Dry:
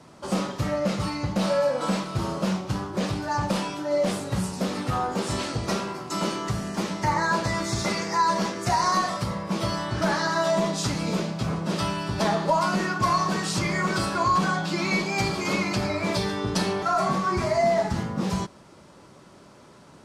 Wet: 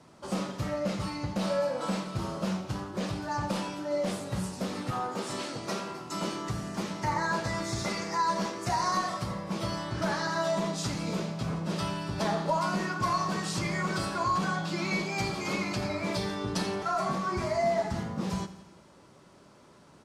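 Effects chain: 4.91–5.9 HPF 190 Hz 12 dB/oct; feedback echo 85 ms, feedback 60%, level -15 dB; gain -6 dB

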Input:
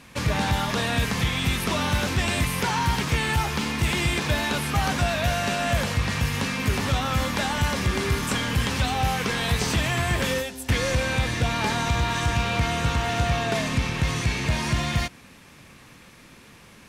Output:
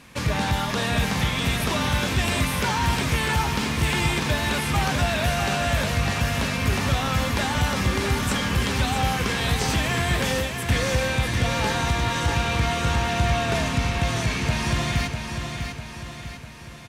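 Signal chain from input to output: feedback echo 0.649 s, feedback 50%, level -6.5 dB

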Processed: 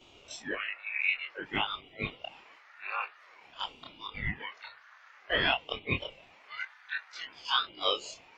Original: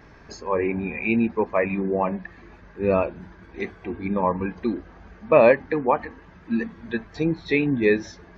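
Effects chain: short-time reversal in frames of 60 ms; inverse Chebyshev high-pass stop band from 450 Hz, stop band 50 dB; ring modulator with a swept carrier 710 Hz, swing 85%, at 0.51 Hz; gain +5.5 dB

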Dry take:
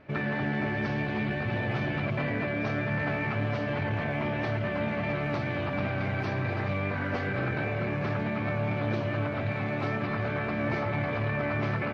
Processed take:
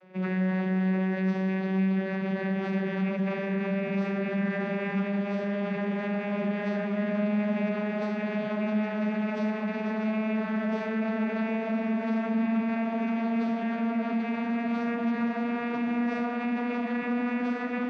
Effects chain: vocoder on a gliding note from F#3, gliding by +5 st; high shelf 4600 Hz +9 dB; diffused feedback echo 1.52 s, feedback 56%, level -8 dB; time stretch by phase-locked vocoder 1.5×; in parallel at +1.5 dB: limiter -27.5 dBFS, peak gain reduction 9.5 dB; on the sum: gain -3 dB

